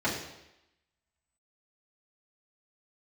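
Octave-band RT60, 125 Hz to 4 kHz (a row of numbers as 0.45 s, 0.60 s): 0.80 s, 0.85 s, 0.90 s, 0.90 s, 0.90 s, 0.90 s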